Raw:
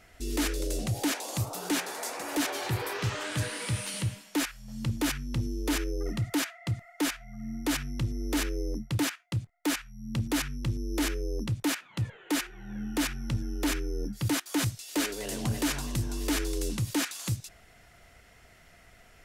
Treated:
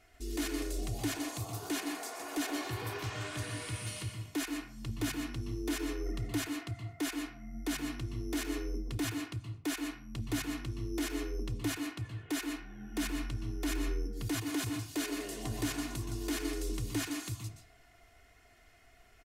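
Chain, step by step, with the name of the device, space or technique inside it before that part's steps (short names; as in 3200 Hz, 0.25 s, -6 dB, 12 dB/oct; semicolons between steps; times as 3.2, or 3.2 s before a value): microphone above a desk (comb 2.8 ms, depth 57%; reverb RT60 0.55 s, pre-delay 0.117 s, DRR 4 dB); gain -8.5 dB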